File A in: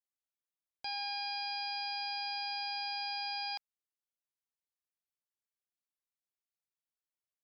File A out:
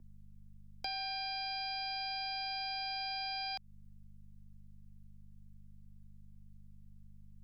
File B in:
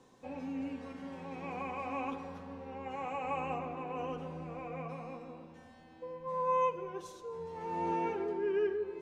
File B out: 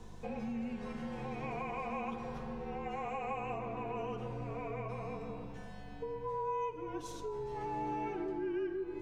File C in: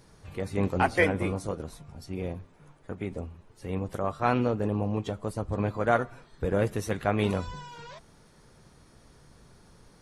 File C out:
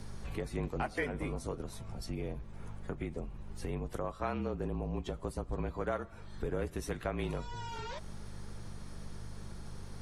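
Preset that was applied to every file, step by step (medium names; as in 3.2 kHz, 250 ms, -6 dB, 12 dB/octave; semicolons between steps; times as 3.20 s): hum 50 Hz, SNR 17 dB; compression 3:1, threshold -44 dBFS; frequency shift -39 Hz; trim +6 dB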